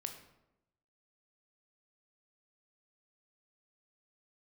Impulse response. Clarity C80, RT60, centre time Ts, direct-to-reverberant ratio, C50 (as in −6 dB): 11.0 dB, 0.90 s, 17 ms, 5.0 dB, 8.5 dB